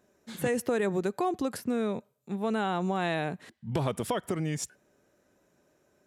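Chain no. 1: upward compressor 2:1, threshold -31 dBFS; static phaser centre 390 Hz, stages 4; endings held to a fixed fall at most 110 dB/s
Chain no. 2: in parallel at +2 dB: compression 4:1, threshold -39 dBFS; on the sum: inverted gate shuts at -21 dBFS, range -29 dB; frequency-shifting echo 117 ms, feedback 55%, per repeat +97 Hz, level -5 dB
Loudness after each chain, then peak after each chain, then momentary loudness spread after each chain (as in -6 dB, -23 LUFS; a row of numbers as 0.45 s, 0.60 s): -38.0 LUFS, -38.0 LUFS; -19.0 dBFS, -15.0 dBFS; 21 LU, 19 LU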